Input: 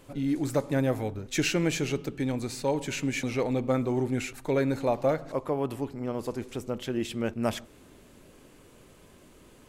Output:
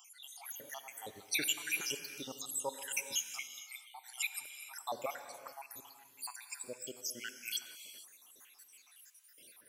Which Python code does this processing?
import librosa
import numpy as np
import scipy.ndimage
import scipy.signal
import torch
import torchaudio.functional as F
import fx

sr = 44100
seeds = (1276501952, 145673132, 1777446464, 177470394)

y = fx.spec_dropout(x, sr, seeds[0], share_pct=83)
y = np.diff(y, prepend=0.0)
y = fx.rev_gated(y, sr, seeds[1], gate_ms=490, shape='flat', drr_db=9.0)
y = F.gain(torch.from_numpy(y), 12.0).numpy()